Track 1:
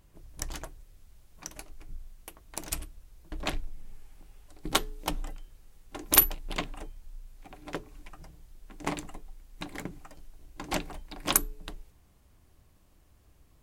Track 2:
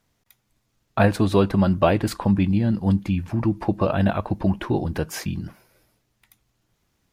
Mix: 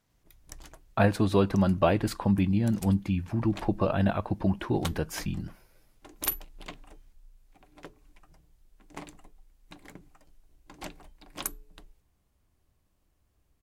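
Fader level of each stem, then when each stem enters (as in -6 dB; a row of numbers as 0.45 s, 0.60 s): -10.0 dB, -5.0 dB; 0.10 s, 0.00 s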